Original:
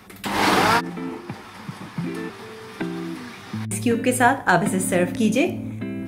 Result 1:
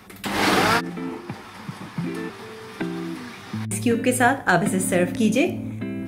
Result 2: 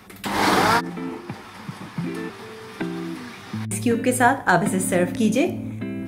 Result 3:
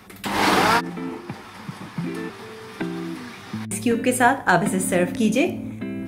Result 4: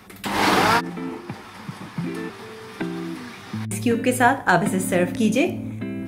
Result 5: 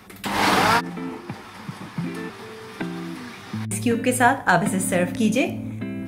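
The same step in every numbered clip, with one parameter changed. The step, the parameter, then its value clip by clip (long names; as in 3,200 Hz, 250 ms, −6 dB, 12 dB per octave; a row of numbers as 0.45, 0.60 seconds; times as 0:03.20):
dynamic equaliser, frequency: 950, 2,700, 110, 8,800, 360 Hertz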